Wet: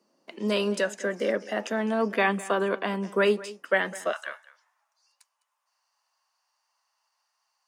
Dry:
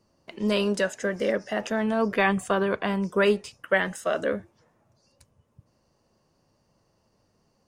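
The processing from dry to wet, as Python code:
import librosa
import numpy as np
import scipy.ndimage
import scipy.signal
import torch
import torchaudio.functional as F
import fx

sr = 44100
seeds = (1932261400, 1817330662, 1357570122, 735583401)

y = fx.steep_highpass(x, sr, hz=fx.steps((0.0, 200.0), (4.11, 850.0)), slope=36)
y = y + 10.0 ** (-18.5 / 20.0) * np.pad(y, (int(206 * sr / 1000.0), 0))[:len(y)]
y = y * 10.0 ** (-1.0 / 20.0)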